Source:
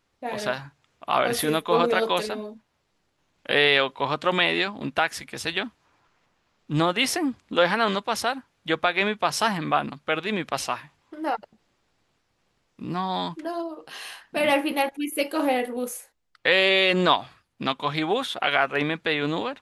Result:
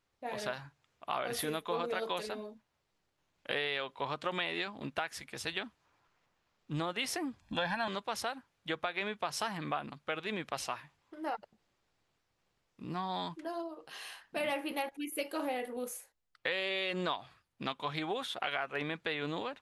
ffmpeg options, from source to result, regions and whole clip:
ffmpeg -i in.wav -filter_complex "[0:a]asettb=1/sr,asplit=3[link_01][link_02][link_03];[link_01]atrim=end=7.404[link_04];[link_02]atrim=start=7.4:end=7.88,asetpts=PTS-STARTPTS,afade=type=in:duration=0.004:curve=qsin,afade=type=out:start_time=0.476:duration=0.004:curve=qsin,lowshelf=frequency=130:gain=10.5,aecho=1:1:1.2:0.89,atrim=end_sample=21168[link_05];[link_03]atrim=start=7.876[link_06];[link_04][link_05]acrossfade=duration=0.004:curve1=hsin:curve2=qsin[link_07];[link_07][link_06]acrossfade=duration=0.004:curve1=qsin:curve2=hsin,acompressor=threshold=-23dB:ratio=4,equalizer=frequency=250:width=1.8:gain=-3,volume=-8dB" out.wav

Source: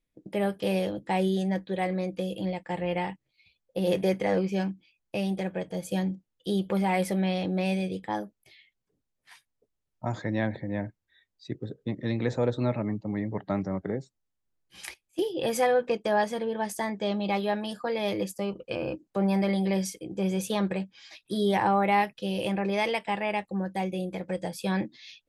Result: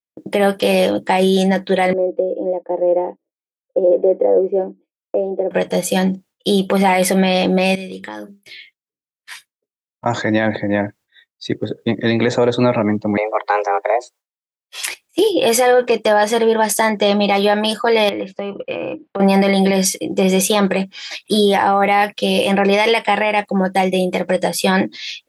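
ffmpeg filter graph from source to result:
ffmpeg -i in.wav -filter_complex "[0:a]asettb=1/sr,asplit=3[link_01][link_02][link_03];[link_01]atrim=end=1.934[link_04];[link_02]atrim=start=1.93:end=5.51,asetpts=PTS-STARTPTS,afade=type=in:duration=0.004:curve=qsin,afade=type=out:start_time=3.576:duration=0.004:curve=qsin,asuperpass=centerf=430:order=4:qfactor=1.4,aemphasis=mode=production:type=50fm[link_05];[link_03]atrim=start=5.506[link_06];[link_04][link_05]acrossfade=duration=0.004:curve1=hsin:curve2=qsin[link_07];[link_07][link_06]acrossfade=duration=0.004:curve1=qsin:curve2=hsin,asettb=1/sr,asplit=3[link_08][link_09][link_10];[link_08]atrim=end=7.754[link_11];[link_09]atrim=start=7.75:end=10.06,asetpts=PTS-STARTPTS,afade=type=in:duration=0.004:curve=qsin,afade=type=out:start_time=2.306:duration=0.004:curve=qsin,bandreject=frequency=50:width_type=h:width=6,bandreject=frequency=100:width_type=h:width=6,bandreject=frequency=150:width_type=h:width=6,bandreject=frequency=200:width_type=h:width=6,bandreject=frequency=250:width_type=h:width=6,bandreject=frequency=300:width_type=h:width=6,bandreject=frequency=350:width_type=h:width=6,bandreject=frequency=400:width_type=h:width=6,acompressor=threshold=-42dB:ratio=4:attack=3.2:release=140:knee=1:detection=peak,equalizer=frequency=760:width=2.8:gain=-10.5[link_12];[link_10]atrim=start=10.056[link_13];[link_11][link_12]acrossfade=duration=0.004:curve1=hsin:curve2=qsin[link_14];[link_14][link_13]acrossfade=duration=0.004:curve1=qsin:curve2=hsin,asettb=1/sr,asplit=3[link_15][link_16][link_17];[link_15]atrim=end=13.174[link_18];[link_16]atrim=start=13.17:end=14.87,asetpts=PTS-STARTPTS,afade=type=in:duration=0.004:curve=qsin,afade=type=out:start_time=1.696:duration=0.004:curve=qsin,highpass=340,afreqshift=220[link_19];[link_17]atrim=start=14.866[link_20];[link_18][link_19]acrossfade=duration=0.004:curve1=hsin:curve2=qsin[link_21];[link_21][link_20]acrossfade=duration=0.004:curve1=qsin:curve2=hsin,asettb=1/sr,asplit=3[link_22][link_23][link_24];[link_22]atrim=end=18.094[link_25];[link_23]atrim=start=18.09:end=19.2,asetpts=PTS-STARTPTS,afade=type=in:duration=0.004:curve=qsin,afade=type=out:start_time=1.106:duration=0.004:curve=qsin,lowpass=frequency=3100:width=0.5412,lowpass=frequency=3100:width=1.3066,acompressor=threshold=-37dB:ratio=5:attack=3.2:release=140:knee=1:detection=peak[link_26];[link_24]atrim=start=19.196[link_27];[link_25][link_26]acrossfade=duration=0.004:curve1=hsin:curve2=qsin[link_28];[link_28][link_27]acrossfade=duration=0.004:curve1=qsin:curve2=hsin,highpass=frequency=400:poles=1,agate=range=-33dB:threshold=-57dB:ratio=3:detection=peak,alimiter=level_in=24dB:limit=-1dB:release=50:level=0:latency=1,volume=-4.5dB" out.wav

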